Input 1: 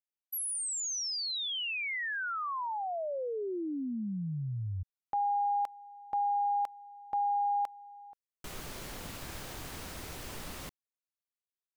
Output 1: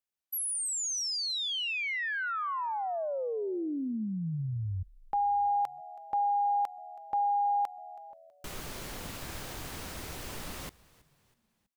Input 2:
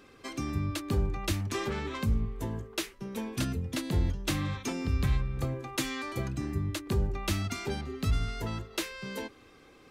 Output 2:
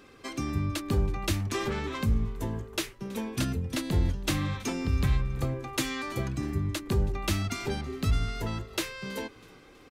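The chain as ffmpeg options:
ffmpeg -i in.wav -filter_complex "[0:a]asplit=4[link_01][link_02][link_03][link_04];[link_02]adelay=324,afreqshift=-80,volume=-22dB[link_05];[link_03]adelay=648,afreqshift=-160,volume=-29.1dB[link_06];[link_04]adelay=972,afreqshift=-240,volume=-36.3dB[link_07];[link_01][link_05][link_06][link_07]amix=inputs=4:normalize=0,volume=2dB" out.wav

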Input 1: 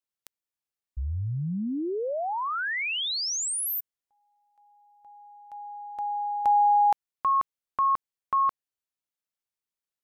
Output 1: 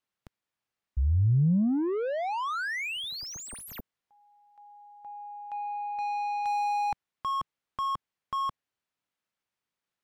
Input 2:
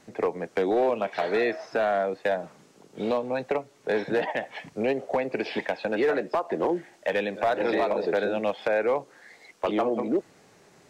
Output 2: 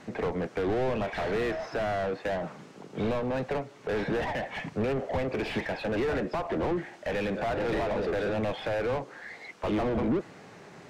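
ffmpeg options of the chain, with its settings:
ffmpeg -i in.wav -filter_complex "[0:a]asplit=2[link_01][link_02];[link_02]highpass=frequency=720:poles=1,volume=25dB,asoftclip=type=tanh:threshold=-16.5dB[link_03];[link_01][link_03]amix=inputs=2:normalize=0,lowpass=frequency=2300:poles=1,volume=-6dB,bass=frequency=250:gain=14,treble=frequency=4000:gain=-2,volume=-8.5dB" out.wav

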